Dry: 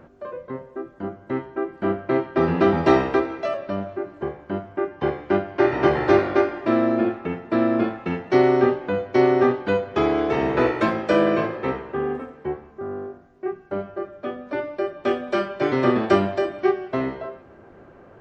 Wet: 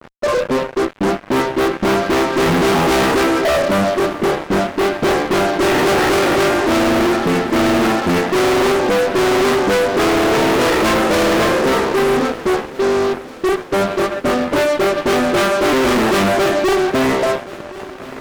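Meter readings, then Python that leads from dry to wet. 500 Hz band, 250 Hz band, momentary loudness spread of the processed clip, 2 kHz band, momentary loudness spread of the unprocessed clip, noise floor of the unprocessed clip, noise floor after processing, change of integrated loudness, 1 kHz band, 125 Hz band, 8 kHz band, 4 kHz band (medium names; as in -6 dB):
+6.5 dB, +6.0 dB, 5 LU, +11.0 dB, 14 LU, -48 dBFS, -33 dBFS, +7.0 dB, +9.0 dB, +6.0 dB, no reading, +17.0 dB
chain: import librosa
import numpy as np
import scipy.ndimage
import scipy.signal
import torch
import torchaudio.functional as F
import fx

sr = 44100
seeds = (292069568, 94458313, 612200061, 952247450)

p1 = fx.wiener(x, sr, points=9)
p2 = scipy.signal.sosfilt(scipy.signal.butter(4, 160.0, 'highpass', fs=sr, output='sos'), p1)
p3 = fx.dispersion(p2, sr, late='highs', ms=45.0, hz=820.0)
p4 = fx.fuzz(p3, sr, gain_db=38.0, gate_db=-45.0)
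y = p4 + fx.echo_feedback(p4, sr, ms=1074, feedback_pct=57, wet_db=-19.0, dry=0)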